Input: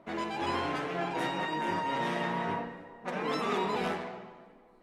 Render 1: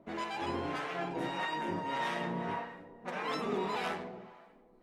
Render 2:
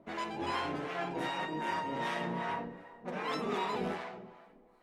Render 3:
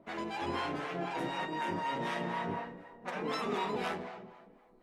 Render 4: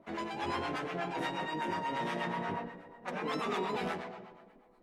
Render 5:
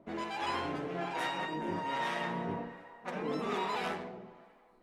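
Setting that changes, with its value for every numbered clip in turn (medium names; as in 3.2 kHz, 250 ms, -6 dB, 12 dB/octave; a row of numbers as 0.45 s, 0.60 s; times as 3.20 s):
harmonic tremolo, rate: 1.7 Hz, 2.6 Hz, 4 Hz, 8.3 Hz, 1.2 Hz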